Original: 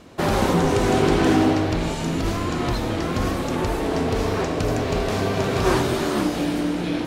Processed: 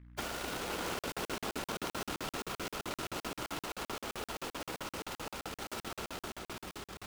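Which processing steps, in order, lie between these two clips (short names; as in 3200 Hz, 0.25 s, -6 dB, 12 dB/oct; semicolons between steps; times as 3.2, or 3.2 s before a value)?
sample sorter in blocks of 32 samples; Doppler pass-by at 1.66, 9 m/s, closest 2.5 m; HPF 360 Hz 12 dB/oct; compressor 8:1, threshold -40 dBFS, peak gain reduction 21.5 dB; bit-crush 8-bit; whisperiser; hum 60 Hz, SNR 13 dB; darkening echo 0.255 s, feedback 74%, low-pass 3300 Hz, level -4 dB; crackling interface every 0.13 s, samples 2048, zero, from 0.99; noise-modulated delay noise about 1500 Hz, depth 0.097 ms; gain +4 dB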